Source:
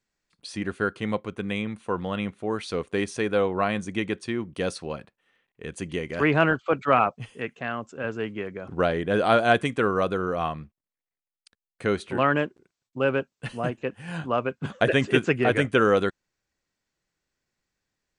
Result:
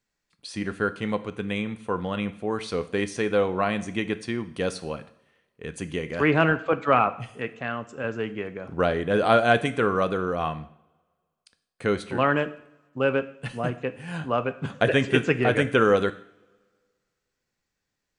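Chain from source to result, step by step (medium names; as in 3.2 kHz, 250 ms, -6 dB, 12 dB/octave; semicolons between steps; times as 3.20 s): two-slope reverb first 0.58 s, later 1.8 s, from -22 dB, DRR 11 dB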